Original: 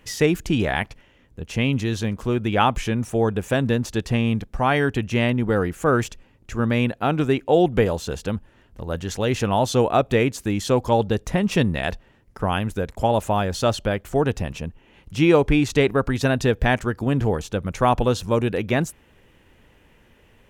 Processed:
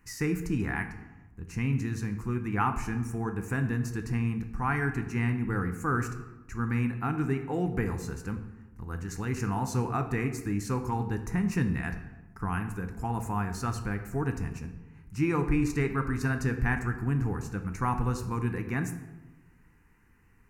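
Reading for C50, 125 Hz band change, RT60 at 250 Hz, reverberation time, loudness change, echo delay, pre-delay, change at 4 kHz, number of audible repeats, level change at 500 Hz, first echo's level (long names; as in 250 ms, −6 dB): 10.0 dB, −5.5 dB, 1.4 s, 1.1 s, −9.0 dB, no echo audible, 4 ms, −19.5 dB, no echo audible, −16.0 dB, no echo audible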